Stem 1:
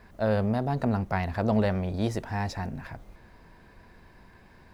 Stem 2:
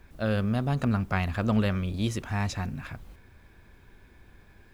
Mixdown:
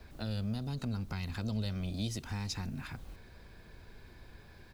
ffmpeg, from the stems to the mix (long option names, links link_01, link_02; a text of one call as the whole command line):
ffmpeg -i stem1.wav -i stem2.wav -filter_complex "[0:a]equalizer=frequency=125:width_type=o:width=1:gain=5,equalizer=frequency=250:width_type=o:width=1:gain=-12,equalizer=frequency=500:width_type=o:width=1:gain=5,equalizer=frequency=1000:width_type=o:width=1:gain=-8,equalizer=frequency=2000:width_type=o:width=1:gain=-9,equalizer=frequency=4000:width_type=o:width=1:gain=10,volume=-4.5dB[link_01];[1:a]acompressor=threshold=-29dB:ratio=6,volume=-1,adelay=1.5,volume=-0.5dB[link_02];[link_01][link_02]amix=inputs=2:normalize=0,acrossover=split=210|3000[link_03][link_04][link_05];[link_04]acompressor=threshold=-45dB:ratio=6[link_06];[link_03][link_06][link_05]amix=inputs=3:normalize=0" out.wav